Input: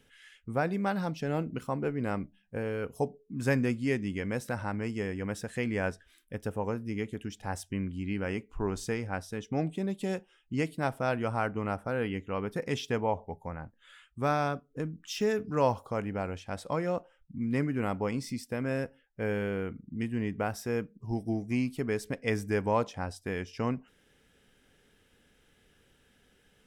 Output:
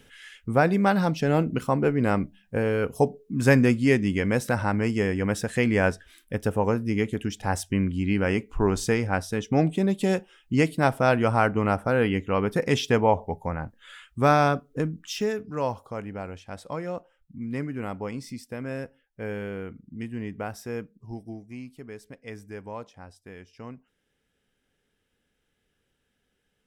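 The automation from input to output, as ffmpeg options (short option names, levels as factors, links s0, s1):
-af "volume=2.82,afade=t=out:st=14.69:d=0.71:silence=0.298538,afade=t=out:st=20.79:d=0.69:silence=0.375837"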